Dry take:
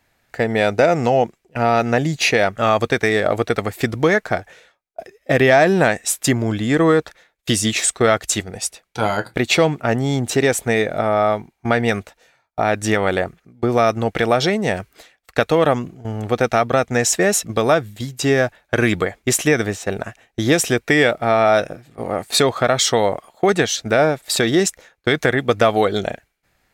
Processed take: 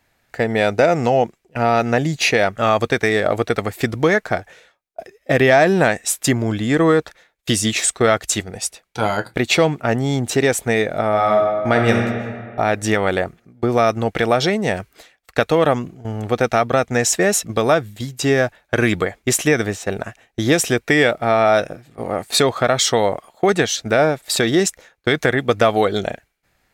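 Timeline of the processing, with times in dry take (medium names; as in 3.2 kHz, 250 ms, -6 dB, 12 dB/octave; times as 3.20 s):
11.08–11.96 s: reverb throw, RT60 1.9 s, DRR 1.5 dB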